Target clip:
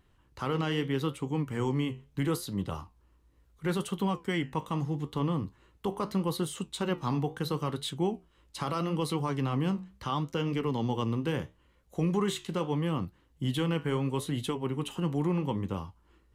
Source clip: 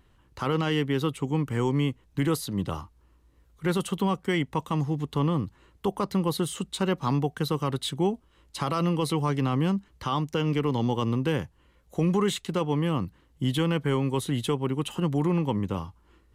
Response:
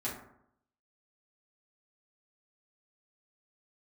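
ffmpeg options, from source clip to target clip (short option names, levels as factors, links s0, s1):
-af "flanger=delay=9.3:depth=9.9:regen=-68:speed=0.76:shape=triangular"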